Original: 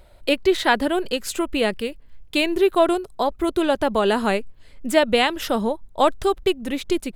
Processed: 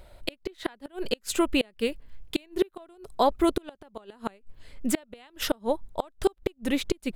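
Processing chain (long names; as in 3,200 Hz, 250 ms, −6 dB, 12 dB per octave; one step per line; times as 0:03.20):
gate with flip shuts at −11 dBFS, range −33 dB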